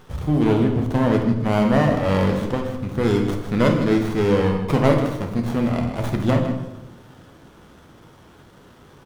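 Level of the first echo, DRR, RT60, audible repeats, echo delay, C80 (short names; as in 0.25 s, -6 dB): -11.0 dB, 2.0 dB, 0.95 s, 1, 0.158 s, 7.5 dB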